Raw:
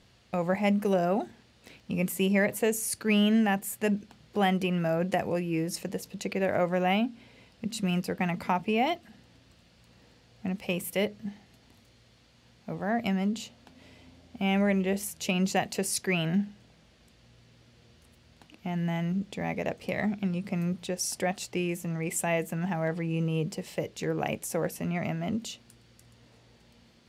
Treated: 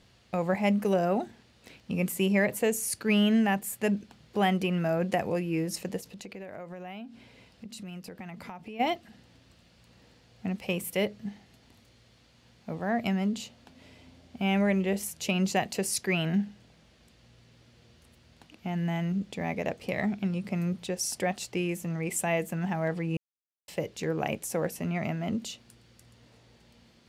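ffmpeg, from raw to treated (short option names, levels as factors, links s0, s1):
-filter_complex "[0:a]asplit=3[s0][s1][s2];[s0]afade=t=out:st=6:d=0.02[s3];[s1]acompressor=threshold=0.01:ratio=5:attack=3.2:release=140:knee=1:detection=peak,afade=t=in:st=6:d=0.02,afade=t=out:st=8.79:d=0.02[s4];[s2]afade=t=in:st=8.79:d=0.02[s5];[s3][s4][s5]amix=inputs=3:normalize=0,asplit=3[s6][s7][s8];[s6]atrim=end=23.17,asetpts=PTS-STARTPTS,afade=t=out:st=23.166:d=0.004:c=hsin[s9];[s7]atrim=start=23.17:end=23.68,asetpts=PTS-STARTPTS,volume=0[s10];[s8]atrim=start=23.68,asetpts=PTS-STARTPTS,afade=t=in:d=0.004:c=hsin[s11];[s9][s10][s11]concat=n=3:v=0:a=1"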